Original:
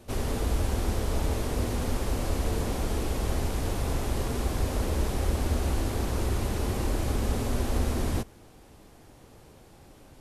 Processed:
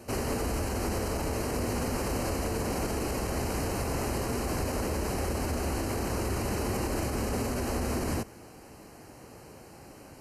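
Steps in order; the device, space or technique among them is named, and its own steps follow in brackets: PA system with an anti-feedback notch (HPF 130 Hz 6 dB/oct; Butterworth band-stop 3500 Hz, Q 3.6; limiter -27.5 dBFS, peak gain reduction 9.5 dB); gain +5.5 dB

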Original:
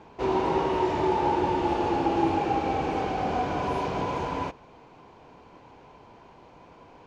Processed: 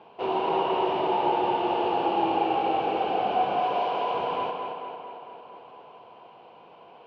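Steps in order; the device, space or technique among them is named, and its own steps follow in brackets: 3.59–4.14 tone controls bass -12 dB, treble +2 dB; tape echo 0.225 s, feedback 68%, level -4.5 dB, low-pass 4500 Hz; kitchen radio (speaker cabinet 190–4200 Hz, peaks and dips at 280 Hz -6 dB, 480 Hz +4 dB, 710 Hz +8 dB, 1100 Hz +3 dB, 1900 Hz -5 dB, 2900 Hz +10 dB); gain -3.5 dB

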